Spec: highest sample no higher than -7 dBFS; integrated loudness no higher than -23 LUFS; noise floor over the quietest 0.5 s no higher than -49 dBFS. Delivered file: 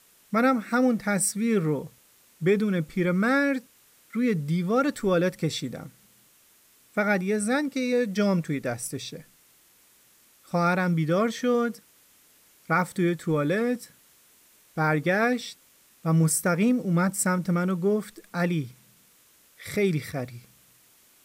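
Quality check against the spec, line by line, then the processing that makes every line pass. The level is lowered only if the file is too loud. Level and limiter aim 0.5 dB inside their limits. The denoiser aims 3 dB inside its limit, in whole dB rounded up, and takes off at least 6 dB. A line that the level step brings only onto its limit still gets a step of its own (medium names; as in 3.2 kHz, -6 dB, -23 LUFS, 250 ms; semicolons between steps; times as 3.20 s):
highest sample -12.5 dBFS: pass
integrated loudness -25.5 LUFS: pass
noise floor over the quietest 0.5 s -59 dBFS: pass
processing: none needed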